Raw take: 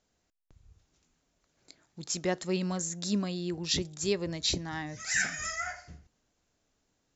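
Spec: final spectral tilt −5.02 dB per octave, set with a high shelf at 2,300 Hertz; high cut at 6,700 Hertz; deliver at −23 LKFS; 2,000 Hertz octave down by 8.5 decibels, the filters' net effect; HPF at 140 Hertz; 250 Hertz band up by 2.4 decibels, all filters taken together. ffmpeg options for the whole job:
ffmpeg -i in.wav -af "highpass=140,lowpass=6700,equalizer=frequency=250:width_type=o:gain=5.5,equalizer=frequency=2000:width_type=o:gain=-8.5,highshelf=frequency=2300:gain=-4.5,volume=10dB" out.wav

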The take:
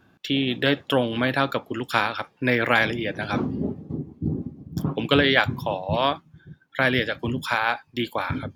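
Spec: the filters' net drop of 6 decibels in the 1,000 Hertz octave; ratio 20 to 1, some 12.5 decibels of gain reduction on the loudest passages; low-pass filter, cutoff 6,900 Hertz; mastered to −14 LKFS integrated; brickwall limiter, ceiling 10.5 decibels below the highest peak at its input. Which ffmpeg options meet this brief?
ffmpeg -i in.wav -af "lowpass=6900,equalizer=frequency=1000:width_type=o:gain=-8.5,acompressor=threshold=-28dB:ratio=20,volume=21dB,alimiter=limit=-1dB:level=0:latency=1" out.wav

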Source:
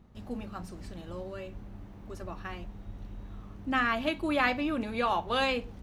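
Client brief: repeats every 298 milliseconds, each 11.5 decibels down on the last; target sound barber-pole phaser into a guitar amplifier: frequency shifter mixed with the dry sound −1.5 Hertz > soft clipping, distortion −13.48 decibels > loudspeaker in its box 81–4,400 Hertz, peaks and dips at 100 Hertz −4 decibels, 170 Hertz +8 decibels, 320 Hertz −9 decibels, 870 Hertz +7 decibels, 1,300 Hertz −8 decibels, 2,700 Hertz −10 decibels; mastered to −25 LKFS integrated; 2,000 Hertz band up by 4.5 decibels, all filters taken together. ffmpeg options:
ffmpeg -i in.wav -filter_complex "[0:a]equalizer=frequency=2000:width_type=o:gain=9,aecho=1:1:298|596|894:0.266|0.0718|0.0194,asplit=2[link_01][link_02];[link_02]afreqshift=-1.5[link_03];[link_01][link_03]amix=inputs=2:normalize=1,asoftclip=threshold=-24dB,highpass=81,equalizer=frequency=100:width_type=q:width=4:gain=-4,equalizer=frequency=170:width_type=q:width=4:gain=8,equalizer=frequency=320:width_type=q:width=4:gain=-9,equalizer=frequency=870:width_type=q:width=4:gain=7,equalizer=frequency=1300:width_type=q:width=4:gain=-8,equalizer=frequency=2700:width_type=q:width=4:gain=-10,lowpass=frequency=4400:width=0.5412,lowpass=frequency=4400:width=1.3066,volume=10.5dB" out.wav

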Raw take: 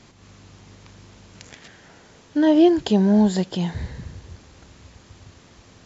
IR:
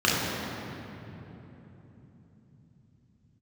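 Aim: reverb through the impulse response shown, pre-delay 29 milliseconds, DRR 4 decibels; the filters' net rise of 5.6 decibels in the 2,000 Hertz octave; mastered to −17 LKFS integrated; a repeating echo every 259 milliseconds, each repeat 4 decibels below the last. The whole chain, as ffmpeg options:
-filter_complex "[0:a]equalizer=frequency=2000:width_type=o:gain=7,aecho=1:1:259|518|777|1036|1295|1554|1813|2072|2331:0.631|0.398|0.25|0.158|0.0994|0.0626|0.0394|0.0249|0.0157,asplit=2[link_01][link_02];[1:a]atrim=start_sample=2205,adelay=29[link_03];[link_02][link_03]afir=irnorm=-1:irlink=0,volume=-22dB[link_04];[link_01][link_04]amix=inputs=2:normalize=0,volume=-2dB"

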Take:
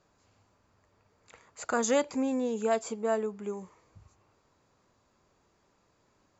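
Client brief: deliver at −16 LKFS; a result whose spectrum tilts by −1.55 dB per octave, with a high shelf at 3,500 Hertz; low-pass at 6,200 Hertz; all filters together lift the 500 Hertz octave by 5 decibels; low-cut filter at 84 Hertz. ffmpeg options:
ffmpeg -i in.wav -af "highpass=84,lowpass=6200,equalizer=frequency=500:width_type=o:gain=6,highshelf=frequency=3500:gain=-4,volume=11dB" out.wav

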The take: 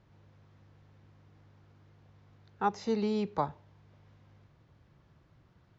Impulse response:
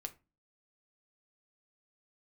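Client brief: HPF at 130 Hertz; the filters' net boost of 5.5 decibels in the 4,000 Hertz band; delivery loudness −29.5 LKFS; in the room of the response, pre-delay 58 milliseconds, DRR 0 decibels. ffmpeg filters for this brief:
-filter_complex "[0:a]highpass=130,equalizer=frequency=4000:width_type=o:gain=6.5,asplit=2[link_01][link_02];[1:a]atrim=start_sample=2205,adelay=58[link_03];[link_02][link_03]afir=irnorm=-1:irlink=0,volume=3dB[link_04];[link_01][link_04]amix=inputs=2:normalize=0,volume=-0.5dB"

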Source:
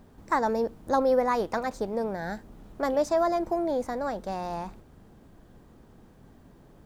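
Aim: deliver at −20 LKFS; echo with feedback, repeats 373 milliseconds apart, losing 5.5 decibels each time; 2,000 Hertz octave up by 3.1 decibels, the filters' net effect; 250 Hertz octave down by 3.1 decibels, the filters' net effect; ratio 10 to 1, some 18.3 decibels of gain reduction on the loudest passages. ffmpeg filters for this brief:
ffmpeg -i in.wav -af "equalizer=frequency=250:width_type=o:gain=-4,equalizer=frequency=2000:width_type=o:gain=4,acompressor=threshold=-39dB:ratio=10,aecho=1:1:373|746|1119|1492|1865|2238|2611:0.531|0.281|0.149|0.079|0.0419|0.0222|0.0118,volume=23dB" out.wav

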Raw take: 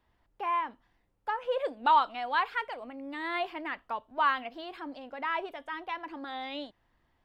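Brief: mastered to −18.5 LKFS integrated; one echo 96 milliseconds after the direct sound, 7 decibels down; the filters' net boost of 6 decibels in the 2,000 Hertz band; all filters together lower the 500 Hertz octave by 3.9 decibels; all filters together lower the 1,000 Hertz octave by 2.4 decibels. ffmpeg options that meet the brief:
ffmpeg -i in.wav -af "equalizer=frequency=500:width_type=o:gain=-4,equalizer=frequency=1000:width_type=o:gain=-4,equalizer=frequency=2000:width_type=o:gain=9,aecho=1:1:96:0.447,volume=12dB" out.wav

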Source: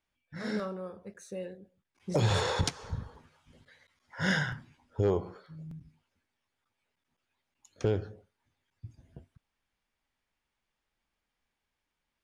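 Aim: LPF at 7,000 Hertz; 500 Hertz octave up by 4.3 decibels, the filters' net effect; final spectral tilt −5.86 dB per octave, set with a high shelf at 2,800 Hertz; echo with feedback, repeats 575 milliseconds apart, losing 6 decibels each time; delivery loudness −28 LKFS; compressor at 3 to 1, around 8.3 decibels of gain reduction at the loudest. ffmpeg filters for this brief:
ffmpeg -i in.wav -af "lowpass=7000,equalizer=frequency=500:width_type=o:gain=5.5,highshelf=frequency=2800:gain=-8.5,acompressor=threshold=-31dB:ratio=3,aecho=1:1:575|1150|1725|2300|2875|3450:0.501|0.251|0.125|0.0626|0.0313|0.0157,volume=10dB" out.wav

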